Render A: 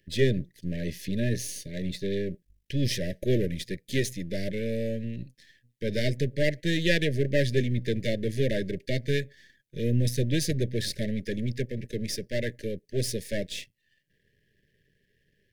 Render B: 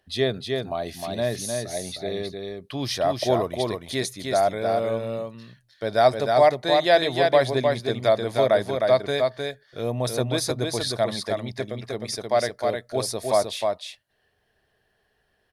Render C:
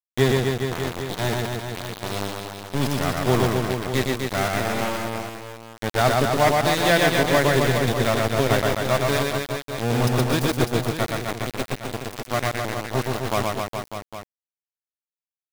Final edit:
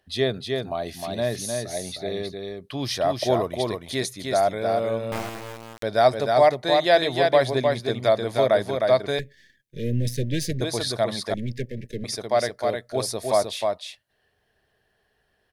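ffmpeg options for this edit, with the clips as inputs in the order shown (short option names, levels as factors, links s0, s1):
-filter_complex "[0:a]asplit=2[s0][s1];[1:a]asplit=4[s2][s3][s4][s5];[s2]atrim=end=5.122[s6];[2:a]atrim=start=5.118:end=5.832[s7];[s3]atrim=start=5.828:end=9.192[s8];[s0]atrim=start=9.188:end=10.612[s9];[s4]atrim=start=10.608:end=11.342[s10];[s1]atrim=start=11.338:end=12.042[s11];[s5]atrim=start=12.038[s12];[s6][s7]acrossfade=d=0.004:c1=hsin:c2=hsin[s13];[s13][s8]acrossfade=d=0.004:c1=hsin:c2=hsin[s14];[s14][s9]acrossfade=d=0.004:c1=hsin:c2=hsin[s15];[s15][s10]acrossfade=d=0.004:c1=hsin:c2=hsin[s16];[s16][s11]acrossfade=d=0.004:c1=hsin:c2=hsin[s17];[s17][s12]acrossfade=d=0.004:c1=hsin:c2=hsin"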